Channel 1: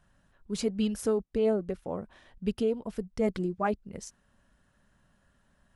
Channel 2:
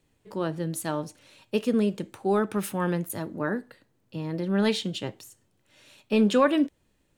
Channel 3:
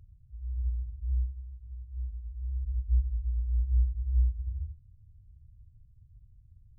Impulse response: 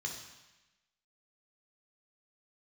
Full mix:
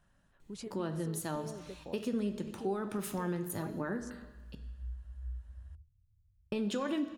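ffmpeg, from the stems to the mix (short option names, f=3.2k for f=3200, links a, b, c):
-filter_complex "[0:a]acompressor=threshold=-40dB:ratio=3,volume=-4dB,asplit=2[a][b];[1:a]alimiter=limit=-17.5dB:level=0:latency=1,adelay=400,volume=0.5dB,asplit=3[c][d][e];[c]atrim=end=4.55,asetpts=PTS-STARTPTS,afade=t=out:st=4.546:d=0.004:c=hsin[f];[d]atrim=start=4.55:end=6.52,asetpts=PTS-STARTPTS,volume=0[g];[e]atrim=start=6.52,asetpts=PTS-STARTPTS,afade=t=in:d=0.004:c=hsin[h];[f][g][h]concat=n=3:v=0:a=1,asplit=2[i][j];[j]volume=-8.5dB[k];[2:a]adelay=1100,volume=-14.5dB[l];[b]apad=whole_len=347930[m];[l][m]sidechaincompress=threshold=-56dB:ratio=8:attack=16:release=859[n];[3:a]atrim=start_sample=2205[o];[k][o]afir=irnorm=-1:irlink=0[p];[a][i][n][p]amix=inputs=4:normalize=0,acompressor=threshold=-37dB:ratio=2"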